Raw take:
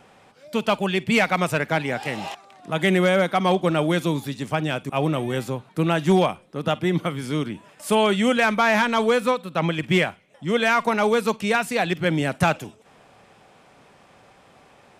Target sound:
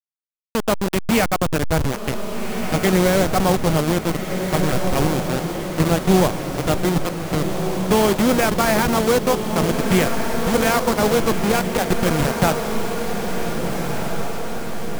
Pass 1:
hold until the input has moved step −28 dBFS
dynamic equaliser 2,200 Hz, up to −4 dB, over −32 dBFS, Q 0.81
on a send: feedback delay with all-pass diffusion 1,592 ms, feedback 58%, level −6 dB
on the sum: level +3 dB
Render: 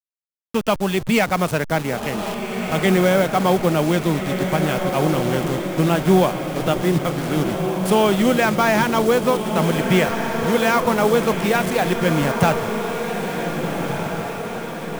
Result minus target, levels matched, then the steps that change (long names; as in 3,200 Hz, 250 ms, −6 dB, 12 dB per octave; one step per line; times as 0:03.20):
hold until the input has moved: distortion −13 dB
change: hold until the input has moved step −16.5 dBFS